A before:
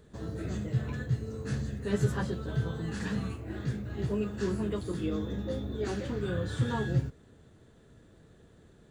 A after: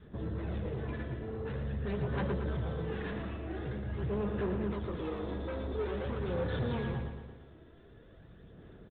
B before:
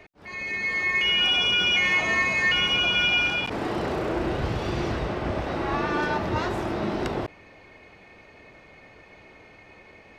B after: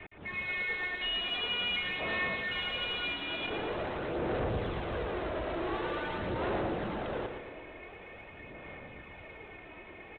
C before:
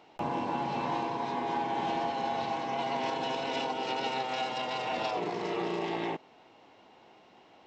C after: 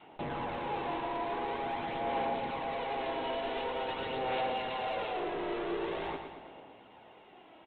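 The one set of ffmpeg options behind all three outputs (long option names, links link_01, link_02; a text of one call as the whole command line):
ffmpeg -i in.wav -af "adynamicequalizer=threshold=0.00447:dfrequency=510:dqfactor=2:tfrequency=510:tqfactor=2:attack=5:release=100:ratio=0.375:range=3.5:mode=boostabove:tftype=bell,acompressor=threshold=-26dB:ratio=4,aresample=8000,asoftclip=type=tanh:threshold=-34.5dB,aresample=44100,aphaser=in_gain=1:out_gain=1:delay=3.1:decay=0.4:speed=0.46:type=sinusoidal,aecho=1:1:114|228|342|456|570|684|798:0.447|0.246|0.135|0.0743|0.0409|0.0225|0.0124" out.wav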